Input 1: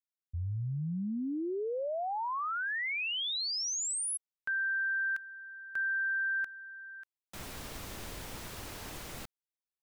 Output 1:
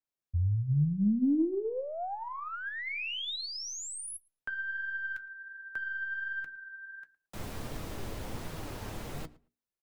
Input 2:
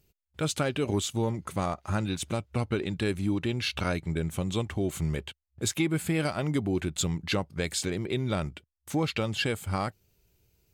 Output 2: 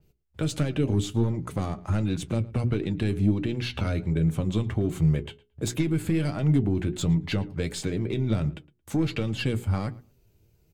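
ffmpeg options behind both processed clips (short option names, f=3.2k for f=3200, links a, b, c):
-filter_complex "[0:a]bandreject=f=60:t=h:w=6,bandreject=f=120:t=h:w=6,bandreject=f=180:t=h:w=6,bandreject=f=240:t=h:w=6,bandreject=f=300:t=h:w=6,bandreject=f=360:t=h:w=6,bandreject=f=420:t=h:w=6,aeval=exprs='0.211*(cos(1*acos(clip(val(0)/0.211,-1,1)))-cos(1*PI/2))+0.0075*(cos(4*acos(clip(val(0)/0.211,-1,1)))-cos(4*PI/2))+0.0841*(cos(5*acos(clip(val(0)/0.211,-1,1)))-cos(5*PI/2))+0.0106*(cos(6*acos(clip(val(0)/0.211,-1,1)))-cos(6*PI/2))+0.0266*(cos(7*acos(clip(val(0)/0.211,-1,1)))-cos(7*PI/2))':c=same,acrossover=split=330|2000[a][b][c];[b]acompressor=threshold=-38dB:ratio=6:attack=48:release=77:knee=2.83:detection=peak[d];[a][d][c]amix=inputs=3:normalize=0,tiltshelf=f=920:g=5,flanger=delay=6.2:depth=3.5:regen=59:speed=1.4:shape=sinusoidal,acontrast=85,asplit=2[e][f];[f]adelay=112,lowpass=f=2.9k:p=1,volume=-20.5dB,asplit=2[g][h];[h]adelay=112,lowpass=f=2.9k:p=1,volume=0.16[i];[e][g][i]amix=inputs=3:normalize=0,adynamicequalizer=threshold=0.00708:dfrequency=4600:dqfactor=0.7:tfrequency=4600:tqfactor=0.7:attack=5:release=100:ratio=0.375:range=2:mode=cutabove:tftype=highshelf,volume=-7dB"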